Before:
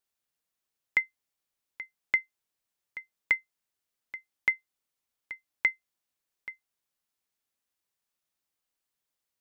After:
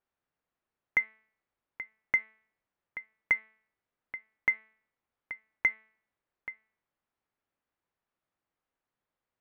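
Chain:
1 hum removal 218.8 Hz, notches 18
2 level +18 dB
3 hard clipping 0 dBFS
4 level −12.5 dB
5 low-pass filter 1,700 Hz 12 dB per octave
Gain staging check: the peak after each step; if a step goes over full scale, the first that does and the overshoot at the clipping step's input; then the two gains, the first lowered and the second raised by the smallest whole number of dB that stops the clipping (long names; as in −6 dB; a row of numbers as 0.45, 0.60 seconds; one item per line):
−13.0, +5.0, 0.0, −12.5, −14.5 dBFS
step 2, 5.0 dB
step 2 +13 dB, step 4 −7.5 dB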